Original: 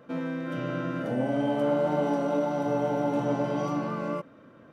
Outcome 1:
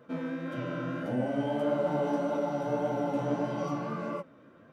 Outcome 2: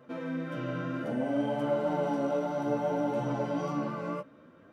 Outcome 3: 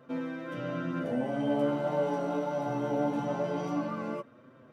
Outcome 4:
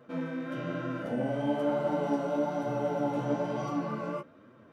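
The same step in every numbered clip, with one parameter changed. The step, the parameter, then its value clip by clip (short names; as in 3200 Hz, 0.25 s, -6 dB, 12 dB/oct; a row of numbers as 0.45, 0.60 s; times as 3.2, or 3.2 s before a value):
flange, rate: 1.7, 0.61, 0.22, 1.1 Hz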